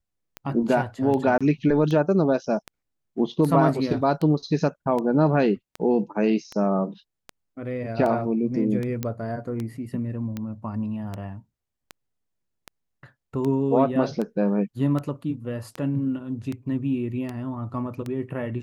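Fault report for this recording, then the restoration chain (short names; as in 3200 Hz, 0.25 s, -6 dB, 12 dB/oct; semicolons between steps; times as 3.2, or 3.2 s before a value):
tick 78 rpm -18 dBFS
1.38–1.41 gap 26 ms
9.03 pop -13 dBFS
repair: de-click; interpolate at 1.38, 26 ms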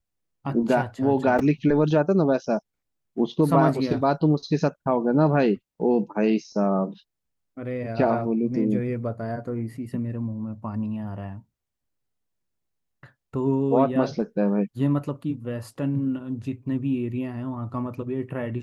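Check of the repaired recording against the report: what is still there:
none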